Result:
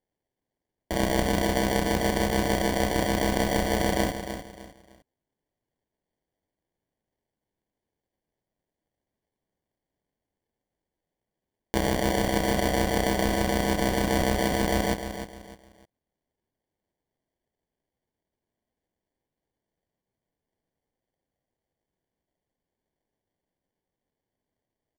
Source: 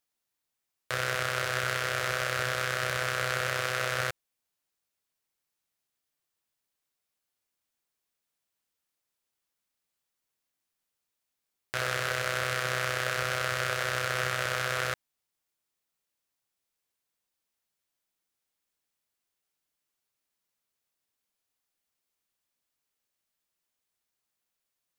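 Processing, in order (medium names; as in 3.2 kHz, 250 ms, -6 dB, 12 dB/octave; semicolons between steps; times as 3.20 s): mistuned SSB +110 Hz 500–2700 Hz; sample-rate reducer 1.3 kHz, jitter 0%; feedback delay 304 ms, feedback 30%, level -9.5 dB; trim +7 dB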